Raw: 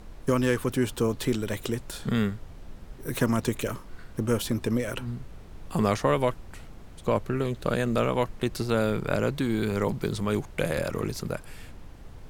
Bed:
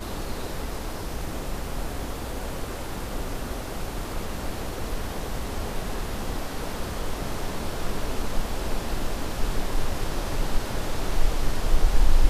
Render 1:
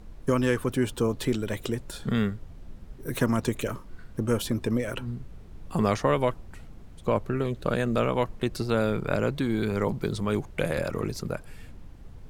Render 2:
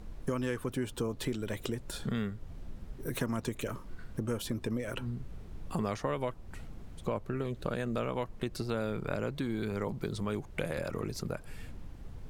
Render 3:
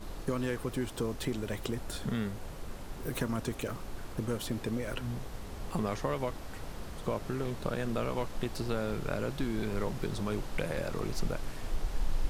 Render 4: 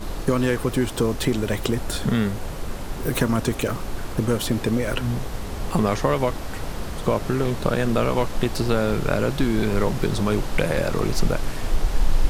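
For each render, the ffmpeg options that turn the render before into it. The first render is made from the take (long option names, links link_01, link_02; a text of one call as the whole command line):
ffmpeg -i in.wav -af "afftdn=noise_reduction=6:noise_floor=-45" out.wav
ffmpeg -i in.wav -af "acompressor=threshold=-34dB:ratio=2.5" out.wav
ffmpeg -i in.wav -i bed.wav -filter_complex "[1:a]volume=-13.5dB[link_01];[0:a][link_01]amix=inputs=2:normalize=0" out.wav
ffmpeg -i in.wav -af "volume=12dB" out.wav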